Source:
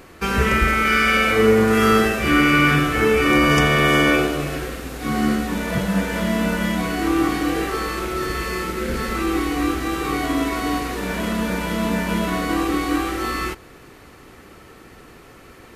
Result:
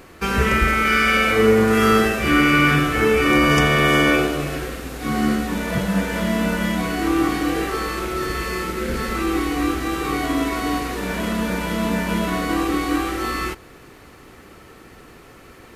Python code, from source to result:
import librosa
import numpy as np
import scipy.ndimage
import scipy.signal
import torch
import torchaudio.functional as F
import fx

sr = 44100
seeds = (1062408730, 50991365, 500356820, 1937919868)

y = fx.quant_dither(x, sr, seeds[0], bits=12, dither='none')